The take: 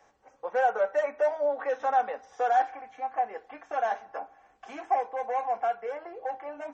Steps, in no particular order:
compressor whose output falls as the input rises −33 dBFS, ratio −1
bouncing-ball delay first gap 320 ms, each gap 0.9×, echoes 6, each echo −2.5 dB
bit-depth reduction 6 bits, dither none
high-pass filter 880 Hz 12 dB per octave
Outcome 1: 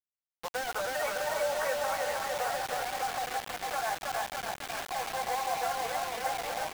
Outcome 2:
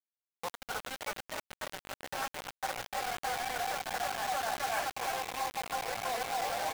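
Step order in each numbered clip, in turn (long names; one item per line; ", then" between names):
high-pass filter, then compressor whose output falls as the input rises, then bouncing-ball delay, then bit-depth reduction
bouncing-ball delay, then compressor whose output falls as the input rises, then high-pass filter, then bit-depth reduction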